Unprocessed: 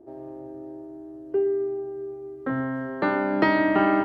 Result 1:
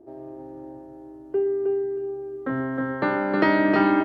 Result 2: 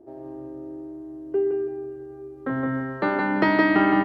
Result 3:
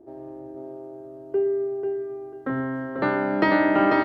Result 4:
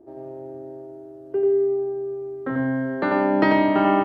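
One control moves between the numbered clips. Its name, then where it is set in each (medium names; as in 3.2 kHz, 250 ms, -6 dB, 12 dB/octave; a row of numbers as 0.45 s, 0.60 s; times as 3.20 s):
feedback delay, time: 314 ms, 166 ms, 492 ms, 91 ms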